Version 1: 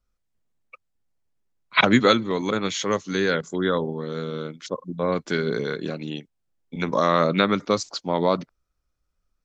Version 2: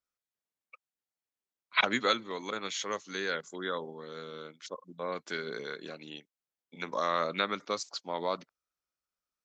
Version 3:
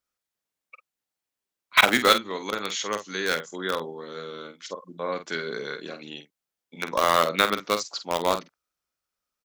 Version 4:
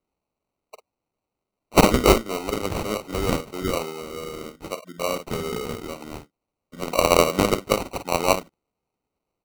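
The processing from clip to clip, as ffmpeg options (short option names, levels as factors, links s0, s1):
-af "highpass=f=760:p=1,volume=0.447"
-filter_complex "[0:a]asplit=2[s0][s1];[s1]acrusher=bits=3:mix=0:aa=0.000001,volume=0.501[s2];[s0][s2]amix=inputs=2:normalize=0,asplit=2[s3][s4];[s4]adelay=48,volume=0.335[s5];[s3][s5]amix=inputs=2:normalize=0,volume=1.88"
-af "acrusher=samples=26:mix=1:aa=0.000001,volume=1.5"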